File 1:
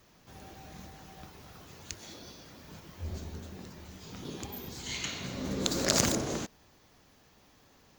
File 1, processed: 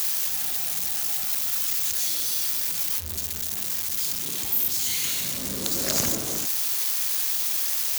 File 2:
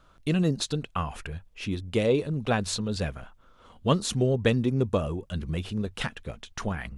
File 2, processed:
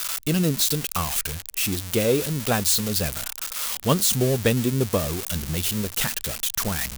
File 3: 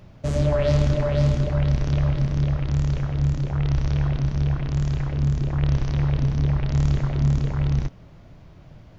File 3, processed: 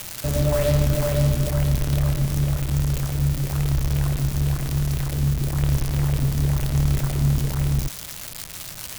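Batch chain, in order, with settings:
zero-crossing glitches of -17 dBFS; normalise loudness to -23 LUFS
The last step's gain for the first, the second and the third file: -1.5 dB, +2.0 dB, 0.0 dB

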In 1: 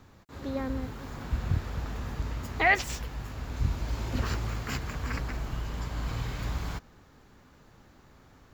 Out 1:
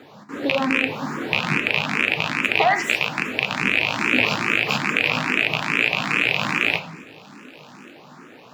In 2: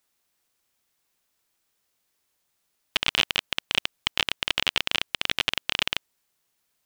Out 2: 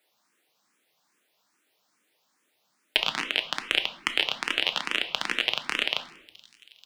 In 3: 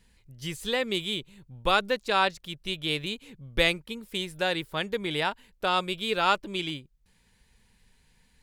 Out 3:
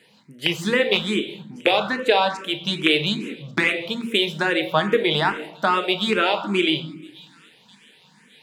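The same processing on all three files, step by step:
rattle on loud lows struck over -33 dBFS, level -15 dBFS; high-pass 180 Hz 24 dB/octave; treble shelf 6.2 kHz -11.5 dB; compression 6:1, threshold -29 dBFS; feedback echo behind a high-pass 1141 ms, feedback 37%, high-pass 4.2 kHz, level -18.5 dB; simulated room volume 250 m³, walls mixed, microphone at 0.48 m; barber-pole phaser +2.4 Hz; peak normalisation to -2 dBFS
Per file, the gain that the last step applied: +17.0 dB, +11.0 dB, +16.0 dB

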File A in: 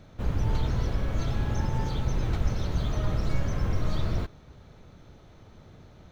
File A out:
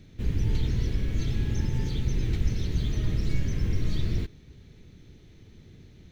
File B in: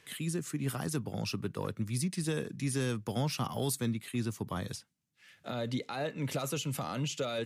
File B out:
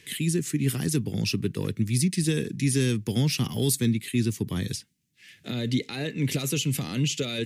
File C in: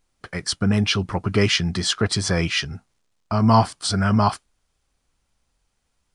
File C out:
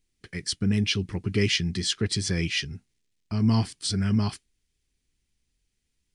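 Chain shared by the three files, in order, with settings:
high-order bell 880 Hz -14 dB; peak normalisation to -12 dBFS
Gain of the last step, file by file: +1.0 dB, +9.0 dB, -4.5 dB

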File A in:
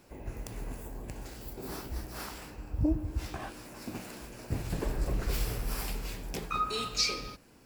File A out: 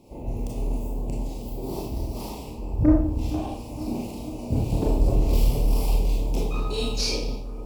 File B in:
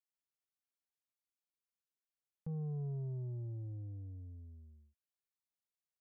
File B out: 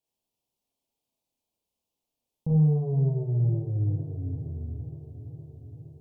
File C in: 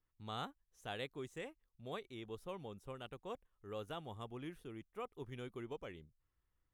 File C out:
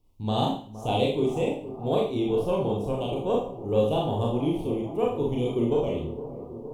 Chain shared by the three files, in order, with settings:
Chebyshev band-stop 910–2700 Hz, order 2; tilt shelf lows +5 dB, about 1.1 kHz; Chebyshev shaper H 6 -24 dB, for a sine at -13.5 dBFS; on a send: bucket-brigade echo 465 ms, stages 4096, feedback 72%, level -13.5 dB; on the sum: Schroeder reverb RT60 0.45 s, combs from 26 ms, DRR -2.5 dB; normalise loudness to -27 LUFS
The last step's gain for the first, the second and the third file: +2.5 dB, +9.0 dB, +15.0 dB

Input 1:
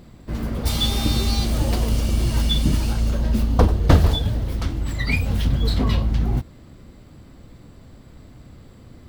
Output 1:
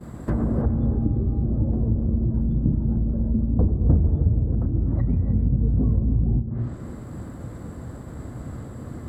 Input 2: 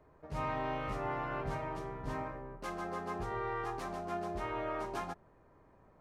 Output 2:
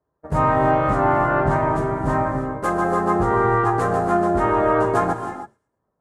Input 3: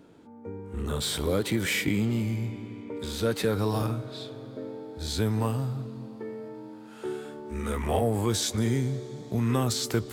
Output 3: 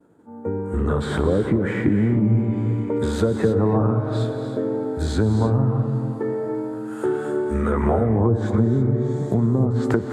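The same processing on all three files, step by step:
low-pass that closes with the level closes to 310 Hz, closed at -19.5 dBFS; high-pass 56 Hz; expander -44 dBFS; high-order bell 3.6 kHz -12.5 dB; compression 2.5:1, threshold -32 dBFS; feedback echo behind a high-pass 111 ms, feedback 35%, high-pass 2.9 kHz, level -20.5 dB; gated-style reverb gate 340 ms rising, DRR 7.5 dB; peak normalisation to -6 dBFS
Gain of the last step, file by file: +10.0 dB, +19.0 dB, +13.5 dB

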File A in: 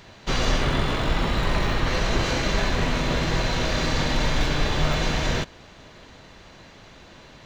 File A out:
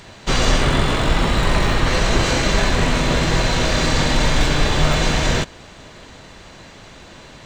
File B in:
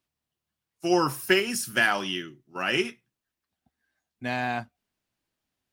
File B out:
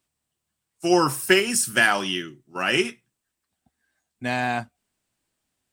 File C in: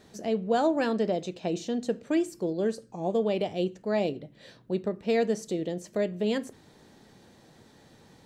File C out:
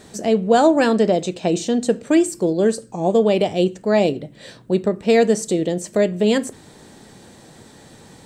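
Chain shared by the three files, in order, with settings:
peaking EQ 8.2 kHz +10 dB 0.38 oct; peak normalisation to -3 dBFS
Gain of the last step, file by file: +6.0 dB, +4.0 dB, +10.5 dB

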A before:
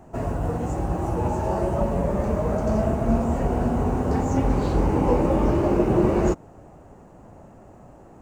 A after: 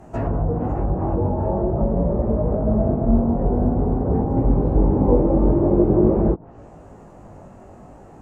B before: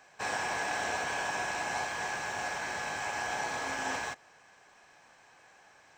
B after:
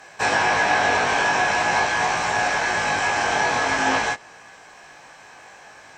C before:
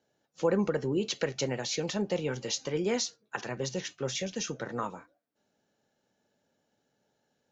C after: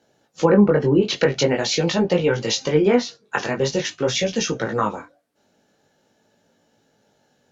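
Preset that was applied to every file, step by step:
chorus 0.46 Hz, delay 17.5 ms, depth 3.6 ms; low-pass that closes with the level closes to 630 Hz, closed at -23 dBFS; normalise loudness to -20 LUFS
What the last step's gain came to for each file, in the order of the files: +7.0 dB, +17.0 dB, +15.5 dB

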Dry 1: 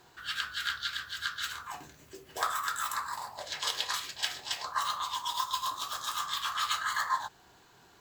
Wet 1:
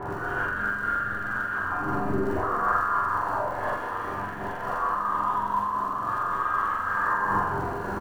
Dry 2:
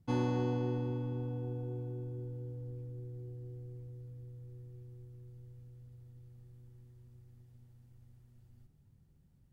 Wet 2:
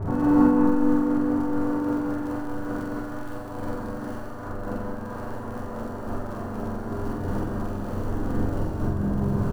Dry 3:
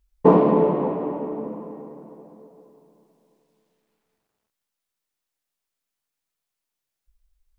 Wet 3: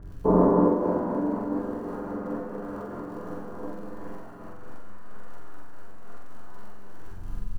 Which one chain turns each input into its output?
jump at every zero crossing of -26 dBFS; low-pass 1.3 kHz 24 dB/octave; flange 0.96 Hz, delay 7 ms, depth 1.3 ms, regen -74%; feedback comb 100 Hz, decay 0.23 s, harmonics all, mix 70%; crackle 47 per s -47 dBFS; doubling 45 ms -5 dB; flutter echo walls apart 7.6 m, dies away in 0.53 s; gated-style reverb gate 340 ms flat, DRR -3 dB; random flutter of the level, depth 50%; normalise loudness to -27 LUFS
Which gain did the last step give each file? +11.5 dB, +12.5 dB, +2.0 dB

